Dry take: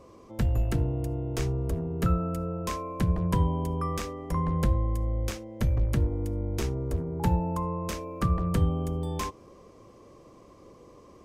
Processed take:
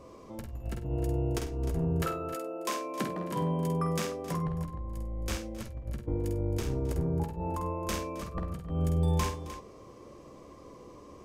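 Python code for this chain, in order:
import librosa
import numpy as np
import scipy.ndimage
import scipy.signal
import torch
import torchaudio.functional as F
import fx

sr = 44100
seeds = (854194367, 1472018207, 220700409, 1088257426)

y = fx.highpass(x, sr, hz=fx.line((2.02, 370.0), (4.46, 110.0)), slope=24, at=(2.02, 4.46), fade=0.02)
y = fx.over_compress(y, sr, threshold_db=-30.0, ratio=-0.5)
y = fx.doubler(y, sr, ms=14.0, db=-11)
y = fx.echo_multitap(y, sr, ms=(49, 66, 98, 267, 305), db=(-6.0, -18.0, -17.5, -19.0, -12.5))
y = y * librosa.db_to_amplitude(-2.0)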